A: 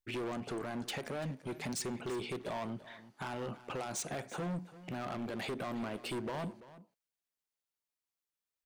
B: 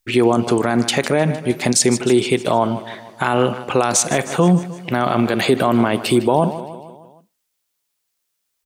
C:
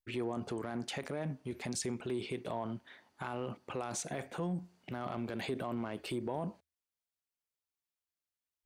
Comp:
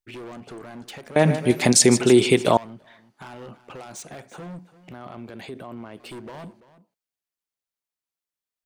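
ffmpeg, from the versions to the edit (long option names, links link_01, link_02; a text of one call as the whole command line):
ffmpeg -i take0.wav -i take1.wav -i take2.wav -filter_complex "[0:a]asplit=3[link_01][link_02][link_03];[link_01]atrim=end=1.162[link_04];[1:a]atrim=start=1.158:end=2.572[link_05];[link_02]atrim=start=2.568:end=4.932[link_06];[2:a]atrim=start=4.928:end=6.002[link_07];[link_03]atrim=start=5.998[link_08];[link_04][link_05]acrossfade=duration=0.004:curve1=hsin:curve2=hsin[link_09];[link_09][link_06]acrossfade=duration=0.004:curve1=hsin:curve2=hsin[link_10];[link_10][link_07]acrossfade=duration=0.004:curve1=hsin:curve2=hsin[link_11];[link_11][link_08]acrossfade=duration=0.004:curve1=hsin:curve2=hsin" out.wav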